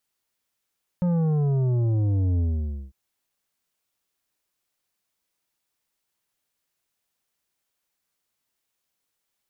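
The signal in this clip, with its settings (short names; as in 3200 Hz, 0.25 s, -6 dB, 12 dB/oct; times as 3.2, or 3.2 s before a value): sub drop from 180 Hz, over 1.90 s, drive 9 dB, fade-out 0.53 s, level -20.5 dB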